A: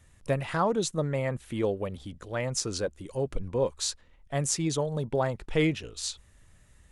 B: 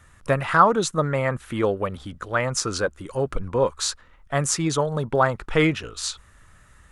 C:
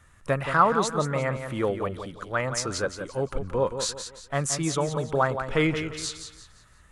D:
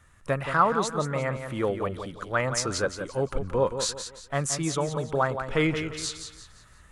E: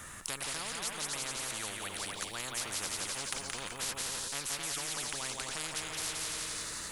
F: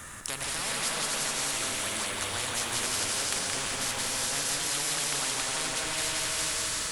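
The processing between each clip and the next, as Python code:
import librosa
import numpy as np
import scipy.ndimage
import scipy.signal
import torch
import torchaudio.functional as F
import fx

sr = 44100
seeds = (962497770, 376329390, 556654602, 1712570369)

y1 = fx.peak_eq(x, sr, hz=1300.0, db=12.5, octaves=0.9)
y1 = y1 * 10.0 ** (4.5 / 20.0)
y2 = fx.echo_feedback(y1, sr, ms=174, feedback_pct=35, wet_db=-8.5)
y2 = y2 * 10.0 ** (-4.0 / 20.0)
y3 = fx.rider(y2, sr, range_db=10, speed_s=2.0)
y3 = y3 * 10.0 ** (-2.0 / 20.0)
y4 = fx.high_shelf(y3, sr, hz=5600.0, db=10.5)
y4 = fx.echo_feedback(y4, sr, ms=260, feedback_pct=36, wet_db=-14.0)
y4 = fx.spectral_comp(y4, sr, ratio=10.0)
y4 = y4 * 10.0 ** (-8.5 / 20.0)
y5 = fx.rev_gated(y4, sr, seeds[0], gate_ms=440, shape='rising', drr_db=-1.5)
y5 = y5 * 10.0 ** (3.5 / 20.0)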